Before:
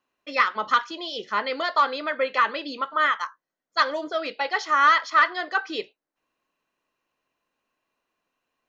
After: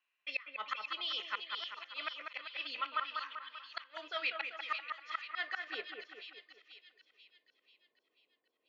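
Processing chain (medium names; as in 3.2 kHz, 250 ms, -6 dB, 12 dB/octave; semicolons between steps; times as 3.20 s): band-pass sweep 2.5 kHz -> 430 Hz, 5.44–6.56 s; inverted gate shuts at -24 dBFS, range -30 dB; on a send: two-band feedback delay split 2.5 kHz, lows 195 ms, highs 488 ms, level -4.5 dB; on the sum: trim +1.5 dB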